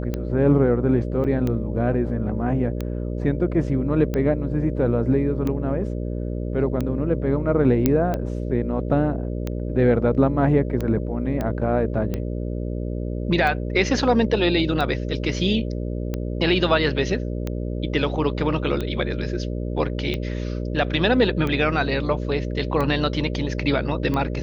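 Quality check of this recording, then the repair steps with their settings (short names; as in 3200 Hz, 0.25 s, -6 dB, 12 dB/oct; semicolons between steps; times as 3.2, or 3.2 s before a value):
buzz 60 Hz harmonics 10 -27 dBFS
tick 45 rpm -14 dBFS
1.24–1.25 gap 6 ms
7.86 pop -5 dBFS
11.41 pop -14 dBFS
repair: de-click; de-hum 60 Hz, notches 10; interpolate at 1.24, 6 ms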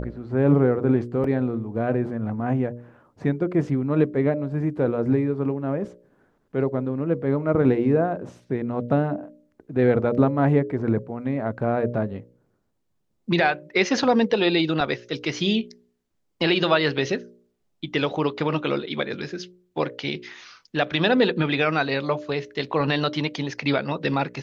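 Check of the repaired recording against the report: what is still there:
11.41 pop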